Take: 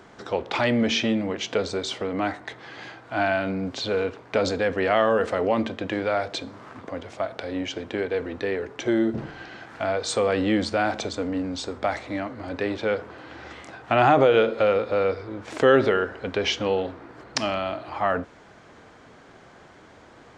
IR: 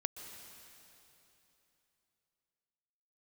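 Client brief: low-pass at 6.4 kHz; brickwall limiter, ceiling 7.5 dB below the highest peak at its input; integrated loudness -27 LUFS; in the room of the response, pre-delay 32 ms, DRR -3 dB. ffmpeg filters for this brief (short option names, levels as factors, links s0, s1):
-filter_complex "[0:a]lowpass=6400,alimiter=limit=0.224:level=0:latency=1,asplit=2[s0][s1];[1:a]atrim=start_sample=2205,adelay=32[s2];[s1][s2]afir=irnorm=-1:irlink=0,volume=1.41[s3];[s0][s3]amix=inputs=2:normalize=0,volume=0.562"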